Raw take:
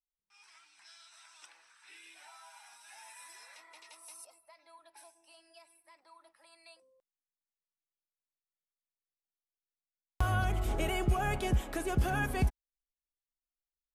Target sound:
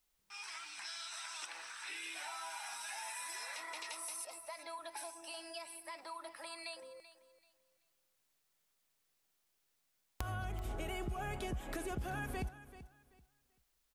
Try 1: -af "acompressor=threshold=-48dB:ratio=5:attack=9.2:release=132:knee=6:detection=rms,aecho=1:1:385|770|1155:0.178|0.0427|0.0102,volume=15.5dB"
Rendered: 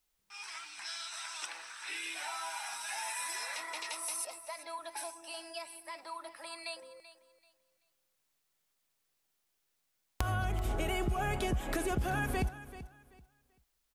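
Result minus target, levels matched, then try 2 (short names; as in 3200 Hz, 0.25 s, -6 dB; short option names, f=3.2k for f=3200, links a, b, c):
compressor: peak gain reduction -7.5 dB
-af "acompressor=threshold=-57.5dB:ratio=5:attack=9.2:release=132:knee=6:detection=rms,aecho=1:1:385|770|1155:0.178|0.0427|0.0102,volume=15.5dB"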